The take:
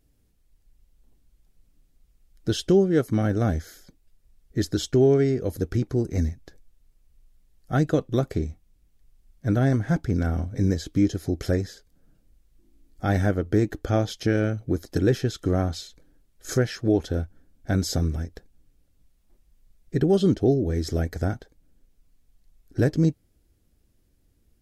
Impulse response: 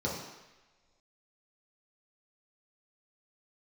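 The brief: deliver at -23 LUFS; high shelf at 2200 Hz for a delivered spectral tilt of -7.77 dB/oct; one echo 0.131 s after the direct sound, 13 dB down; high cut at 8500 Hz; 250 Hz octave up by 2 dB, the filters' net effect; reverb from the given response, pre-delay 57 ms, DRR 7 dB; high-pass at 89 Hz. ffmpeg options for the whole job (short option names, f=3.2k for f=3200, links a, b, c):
-filter_complex "[0:a]highpass=89,lowpass=8.5k,equalizer=f=250:t=o:g=3,highshelf=f=2.2k:g=-4,aecho=1:1:131:0.224,asplit=2[a][b];[1:a]atrim=start_sample=2205,adelay=57[c];[b][c]afir=irnorm=-1:irlink=0,volume=-14dB[d];[a][d]amix=inputs=2:normalize=0,volume=-1.5dB"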